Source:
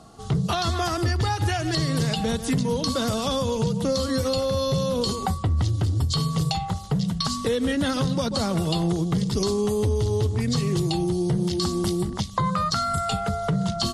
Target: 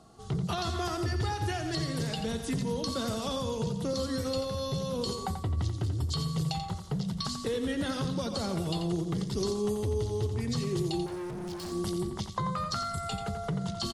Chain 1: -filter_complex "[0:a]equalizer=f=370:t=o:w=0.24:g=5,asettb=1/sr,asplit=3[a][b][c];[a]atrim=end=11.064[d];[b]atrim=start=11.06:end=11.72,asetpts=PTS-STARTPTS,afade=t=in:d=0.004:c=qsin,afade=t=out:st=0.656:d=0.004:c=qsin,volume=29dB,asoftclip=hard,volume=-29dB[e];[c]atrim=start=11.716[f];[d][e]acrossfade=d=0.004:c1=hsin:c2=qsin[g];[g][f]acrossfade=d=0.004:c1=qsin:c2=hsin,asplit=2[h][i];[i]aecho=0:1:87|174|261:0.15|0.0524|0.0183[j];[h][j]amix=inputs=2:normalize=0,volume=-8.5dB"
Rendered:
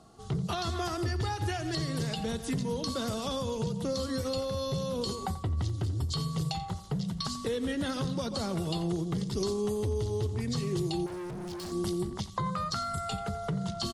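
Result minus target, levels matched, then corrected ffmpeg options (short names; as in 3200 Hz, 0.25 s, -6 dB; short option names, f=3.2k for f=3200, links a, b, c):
echo-to-direct -8 dB
-filter_complex "[0:a]equalizer=f=370:t=o:w=0.24:g=5,asettb=1/sr,asplit=3[a][b][c];[a]atrim=end=11.064[d];[b]atrim=start=11.06:end=11.72,asetpts=PTS-STARTPTS,afade=t=in:d=0.004:c=qsin,afade=t=out:st=0.656:d=0.004:c=qsin,volume=29dB,asoftclip=hard,volume=-29dB[e];[c]atrim=start=11.716[f];[d][e]acrossfade=d=0.004:c1=hsin:c2=qsin[g];[g][f]acrossfade=d=0.004:c1=qsin:c2=hsin,asplit=2[h][i];[i]aecho=0:1:87|174|261|348:0.376|0.132|0.046|0.0161[j];[h][j]amix=inputs=2:normalize=0,volume=-8.5dB"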